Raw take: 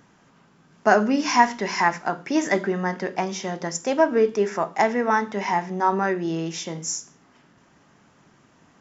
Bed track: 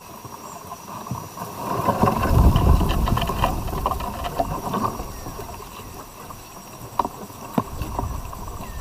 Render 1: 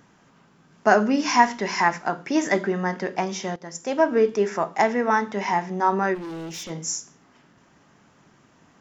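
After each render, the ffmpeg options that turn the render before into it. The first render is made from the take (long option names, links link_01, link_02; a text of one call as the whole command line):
ffmpeg -i in.wav -filter_complex "[0:a]asplit=3[link_01][link_02][link_03];[link_01]afade=type=out:start_time=6.14:duration=0.02[link_04];[link_02]asoftclip=type=hard:threshold=-32dB,afade=type=in:start_time=6.14:duration=0.02,afade=type=out:start_time=6.69:duration=0.02[link_05];[link_03]afade=type=in:start_time=6.69:duration=0.02[link_06];[link_04][link_05][link_06]amix=inputs=3:normalize=0,asplit=2[link_07][link_08];[link_07]atrim=end=3.56,asetpts=PTS-STARTPTS,afade=type=out:start_time=3.556:duration=0.004:curve=hsin:silence=0.177828[link_09];[link_08]atrim=start=3.56,asetpts=PTS-STARTPTS,afade=type=in:duration=0.53:silence=0.177828[link_10];[link_09][link_10]concat=n=2:v=0:a=1" out.wav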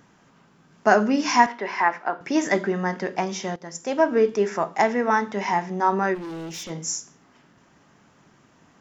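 ffmpeg -i in.wav -filter_complex "[0:a]asettb=1/sr,asplit=3[link_01][link_02][link_03];[link_01]atrim=end=1.464[link_04];[link_02]atrim=start=1.46:end=2.21,asetpts=PTS-STARTPTS,afade=type=in:duration=0.004:curve=qsin,afade=type=out:start_time=0.746:duration=0.004:curve=qsin,highpass=360,lowpass=2600[link_05];[link_03]atrim=start=2.206[link_06];[link_04][link_05]acrossfade=duration=0.004:curve1=hsin:curve2=qsin[link_07];[link_07][link_06]acrossfade=duration=0.004:curve1=qsin:curve2=hsin" out.wav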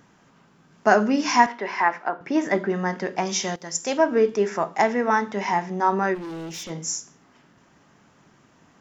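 ffmpeg -i in.wav -filter_complex "[0:a]asettb=1/sr,asplit=3[link_01][link_02][link_03];[link_01]atrim=end=2.094[link_04];[link_02]atrim=start=2.09:end=2.7,asetpts=PTS-STARTPTS,afade=type=in:duration=0.004:curve=qsin,afade=type=out:start_time=0.606:duration=0.004:curve=qsin,lowpass=frequency=2200:poles=1[link_05];[link_03]atrim=start=2.696[link_06];[link_04][link_05]acrossfade=duration=0.004:curve1=hsin:curve2=qsin[link_07];[link_07][link_06]acrossfade=duration=0.004:curve1=qsin:curve2=hsin,asettb=1/sr,asplit=3[link_08][link_09][link_10];[link_08]atrim=end=3.254[link_11];[link_09]atrim=start=3.25:end=3.98,asetpts=PTS-STARTPTS,afade=type=in:duration=0.004:curve=qsin,afade=type=out:start_time=0.726:duration=0.004:curve=qsin,highshelf=frequency=2600:gain=10.5[link_12];[link_10]atrim=start=3.976[link_13];[link_11][link_12]acrossfade=duration=0.004:curve1=hsin:curve2=qsin[link_14];[link_14][link_13]acrossfade=duration=0.004:curve1=qsin:curve2=hsin" out.wav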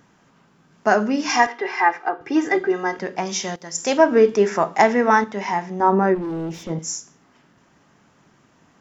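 ffmpeg -i in.wav -filter_complex "[0:a]asettb=1/sr,asplit=3[link_01][link_02][link_03];[link_01]atrim=end=1.294[link_04];[link_02]atrim=start=1.29:end=2.99,asetpts=PTS-STARTPTS,afade=type=in:duration=0.004:curve=qsin,afade=type=out:start_time=1.696:duration=0.004:curve=qsin,aecho=1:1:2.5:0.96,atrim=end_sample=74970[link_05];[link_03]atrim=start=2.986[link_06];[link_04][link_05]acrossfade=duration=0.004:curve1=hsin:curve2=qsin[link_07];[link_07][link_06]acrossfade=duration=0.004:curve1=qsin:curve2=hsin,asettb=1/sr,asplit=3[link_08][link_09][link_10];[link_08]atrim=end=5.804[link_11];[link_09]atrim=start=5.8:end=6.79,asetpts=PTS-STARTPTS,afade=type=in:duration=0.004:curve=qsin,afade=type=out:start_time=0.986:duration=0.004:curve=qsin,tiltshelf=frequency=1500:gain=8[link_12];[link_10]atrim=start=6.786[link_13];[link_11][link_12]acrossfade=duration=0.004:curve1=hsin:curve2=qsin[link_14];[link_14][link_13]acrossfade=duration=0.004:curve1=qsin:curve2=hsin,asplit=3[link_15][link_16][link_17];[link_15]atrim=end=3.782[link_18];[link_16]atrim=start=3.778:end=5.242,asetpts=PTS-STARTPTS,volume=5dB[link_19];[link_17]atrim=start=5.238[link_20];[link_18][link_19]acrossfade=duration=0.004:curve1=hsin:curve2=hsin[link_21];[link_21][link_20]acrossfade=duration=0.004:curve1=hsin:curve2=hsin" out.wav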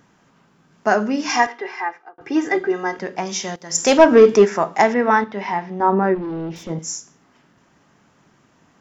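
ffmpeg -i in.wav -filter_complex "[0:a]asplit=3[link_01][link_02][link_03];[link_01]afade=type=out:start_time=3.69:duration=0.02[link_04];[link_02]acontrast=74,afade=type=in:start_time=3.69:duration=0.02,afade=type=out:start_time=4.44:duration=0.02[link_05];[link_03]afade=type=in:start_time=4.44:duration=0.02[link_06];[link_04][link_05][link_06]amix=inputs=3:normalize=0,asettb=1/sr,asplit=3[link_07][link_08][link_09];[link_07]atrim=end=4.944[link_10];[link_08]atrim=start=4.94:end=6.56,asetpts=PTS-STARTPTS,afade=type=in:duration=0.004:curve=qsin,afade=type=out:start_time=1.616:duration=0.004:curve=qsin,lowpass=frequency=4700:width=0.5412,lowpass=frequency=4700:width=1.3066[link_11];[link_09]atrim=start=6.556[link_12];[link_10][link_11]acrossfade=duration=0.004:curve1=hsin:curve2=qsin[link_13];[link_13][link_12]acrossfade=duration=0.004:curve1=qsin:curve2=hsin,asplit=2[link_14][link_15];[link_14]atrim=end=2.18,asetpts=PTS-STARTPTS,afade=type=out:start_time=1.39:duration=0.79[link_16];[link_15]atrim=start=2.18,asetpts=PTS-STARTPTS,afade=type=in:duration=0.004:curve=hsin[link_17];[link_16][link_17]concat=n=2:v=0:a=1" out.wav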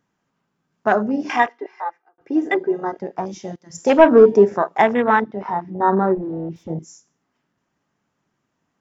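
ffmpeg -i in.wav -af "afwtdn=0.0794" out.wav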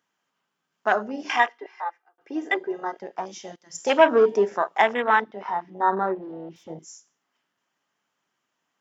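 ffmpeg -i in.wav -af "highpass=frequency=990:poles=1,equalizer=frequency=3100:width=6.3:gain=5.5" out.wav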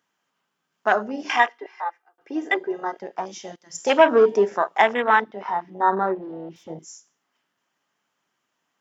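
ffmpeg -i in.wav -af "volume=2dB,alimiter=limit=-3dB:level=0:latency=1" out.wav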